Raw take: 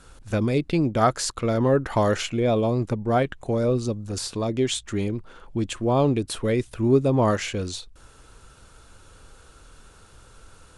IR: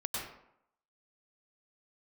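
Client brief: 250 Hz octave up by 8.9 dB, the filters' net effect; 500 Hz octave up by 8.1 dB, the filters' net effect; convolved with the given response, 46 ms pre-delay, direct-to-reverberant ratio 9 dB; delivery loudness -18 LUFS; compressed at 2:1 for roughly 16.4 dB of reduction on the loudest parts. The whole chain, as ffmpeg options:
-filter_complex "[0:a]equalizer=f=250:t=o:g=8.5,equalizer=f=500:t=o:g=7.5,acompressor=threshold=-36dB:ratio=2,asplit=2[a][b];[1:a]atrim=start_sample=2205,adelay=46[c];[b][c]afir=irnorm=-1:irlink=0,volume=-12.5dB[d];[a][d]amix=inputs=2:normalize=0,volume=11.5dB"

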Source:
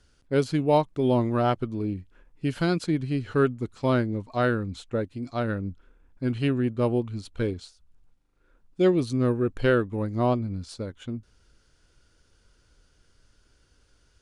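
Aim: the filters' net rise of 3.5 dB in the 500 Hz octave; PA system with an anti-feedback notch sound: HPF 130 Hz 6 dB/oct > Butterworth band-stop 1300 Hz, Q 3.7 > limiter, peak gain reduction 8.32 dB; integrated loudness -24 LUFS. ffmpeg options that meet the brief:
-af "highpass=f=130:p=1,asuperstop=centerf=1300:order=8:qfactor=3.7,equalizer=f=500:t=o:g=5,volume=3.5dB,alimiter=limit=-11.5dB:level=0:latency=1"

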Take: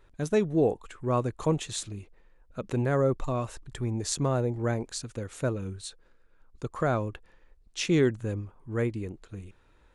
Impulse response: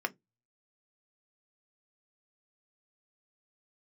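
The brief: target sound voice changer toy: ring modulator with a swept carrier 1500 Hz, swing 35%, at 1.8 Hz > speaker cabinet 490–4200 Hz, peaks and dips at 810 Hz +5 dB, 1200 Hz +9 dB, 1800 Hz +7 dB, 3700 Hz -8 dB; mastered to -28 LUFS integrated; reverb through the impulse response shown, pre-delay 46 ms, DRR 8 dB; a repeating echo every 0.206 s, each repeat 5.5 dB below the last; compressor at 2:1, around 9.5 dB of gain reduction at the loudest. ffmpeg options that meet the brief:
-filter_complex "[0:a]acompressor=threshold=-37dB:ratio=2,aecho=1:1:206|412|618|824|1030|1236|1442:0.531|0.281|0.149|0.079|0.0419|0.0222|0.0118,asplit=2[a][b];[1:a]atrim=start_sample=2205,adelay=46[c];[b][c]afir=irnorm=-1:irlink=0,volume=-13.5dB[d];[a][d]amix=inputs=2:normalize=0,aeval=exprs='val(0)*sin(2*PI*1500*n/s+1500*0.35/1.8*sin(2*PI*1.8*n/s))':c=same,highpass=490,equalizer=f=810:t=q:w=4:g=5,equalizer=f=1.2k:t=q:w=4:g=9,equalizer=f=1.8k:t=q:w=4:g=7,equalizer=f=3.7k:t=q:w=4:g=-8,lowpass=f=4.2k:w=0.5412,lowpass=f=4.2k:w=1.3066,volume=4dB"

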